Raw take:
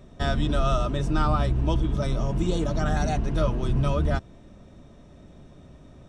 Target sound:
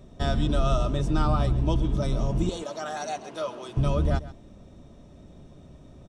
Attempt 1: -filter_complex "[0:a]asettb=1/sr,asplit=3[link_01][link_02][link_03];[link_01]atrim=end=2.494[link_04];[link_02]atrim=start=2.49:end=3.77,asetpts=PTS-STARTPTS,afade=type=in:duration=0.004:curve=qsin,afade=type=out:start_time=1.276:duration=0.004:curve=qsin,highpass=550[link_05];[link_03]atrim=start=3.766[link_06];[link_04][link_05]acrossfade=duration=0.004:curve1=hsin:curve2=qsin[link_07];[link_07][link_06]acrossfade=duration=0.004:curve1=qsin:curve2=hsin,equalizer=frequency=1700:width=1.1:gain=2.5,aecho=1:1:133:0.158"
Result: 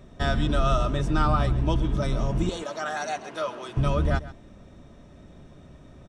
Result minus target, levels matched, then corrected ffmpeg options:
2,000 Hz band +6.0 dB
-filter_complex "[0:a]asettb=1/sr,asplit=3[link_01][link_02][link_03];[link_01]atrim=end=2.494[link_04];[link_02]atrim=start=2.49:end=3.77,asetpts=PTS-STARTPTS,afade=type=in:duration=0.004:curve=qsin,afade=type=out:start_time=1.276:duration=0.004:curve=qsin,highpass=550[link_05];[link_03]atrim=start=3.766[link_06];[link_04][link_05]acrossfade=duration=0.004:curve1=hsin:curve2=qsin[link_07];[link_07][link_06]acrossfade=duration=0.004:curve1=qsin:curve2=hsin,equalizer=frequency=1700:width=1.1:gain=-5,aecho=1:1:133:0.158"

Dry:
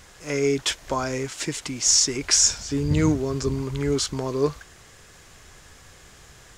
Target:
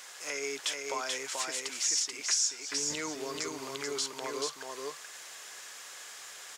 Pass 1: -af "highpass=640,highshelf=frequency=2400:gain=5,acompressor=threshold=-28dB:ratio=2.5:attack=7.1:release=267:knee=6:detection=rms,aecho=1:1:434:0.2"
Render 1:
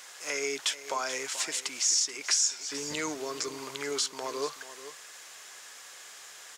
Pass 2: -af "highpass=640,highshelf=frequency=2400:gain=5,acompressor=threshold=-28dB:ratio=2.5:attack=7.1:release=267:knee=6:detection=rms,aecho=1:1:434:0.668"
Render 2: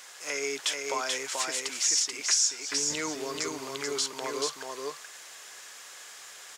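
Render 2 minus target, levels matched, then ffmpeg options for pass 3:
downward compressor: peak gain reduction −4 dB
-af "highpass=640,highshelf=frequency=2400:gain=5,acompressor=threshold=-34.5dB:ratio=2.5:attack=7.1:release=267:knee=6:detection=rms,aecho=1:1:434:0.668"

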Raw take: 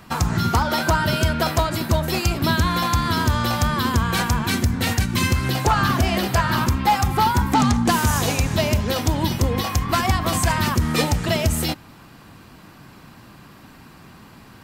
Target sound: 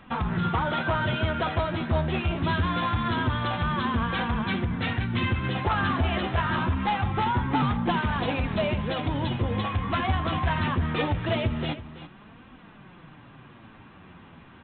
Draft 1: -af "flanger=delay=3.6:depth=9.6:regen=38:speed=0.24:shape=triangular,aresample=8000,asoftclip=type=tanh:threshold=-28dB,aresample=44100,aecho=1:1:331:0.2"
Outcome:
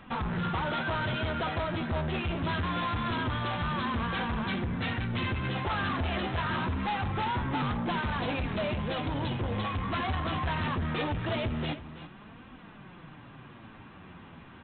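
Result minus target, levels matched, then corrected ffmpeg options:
soft clipping: distortion +8 dB
-af "flanger=delay=3.6:depth=9.6:regen=38:speed=0.24:shape=triangular,aresample=8000,asoftclip=type=tanh:threshold=-18.5dB,aresample=44100,aecho=1:1:331:0.2"

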